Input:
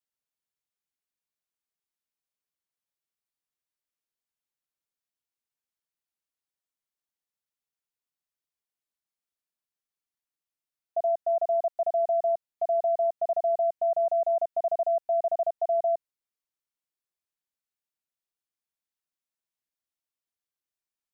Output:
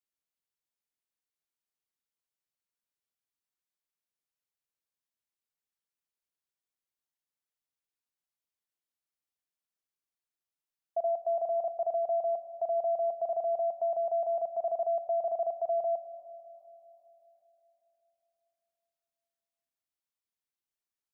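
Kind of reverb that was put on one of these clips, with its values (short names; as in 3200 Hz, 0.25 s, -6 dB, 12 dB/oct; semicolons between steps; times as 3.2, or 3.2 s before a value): Schroeder reverb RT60 3.6 s, combs from 31 ms, DRR 11.5 dB; gain -3.5 dB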